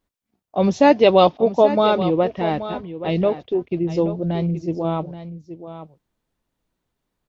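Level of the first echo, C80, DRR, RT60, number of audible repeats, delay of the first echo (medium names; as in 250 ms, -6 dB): -12.5 dB, no reverb, no reverb, no reverb, 1, 828 ms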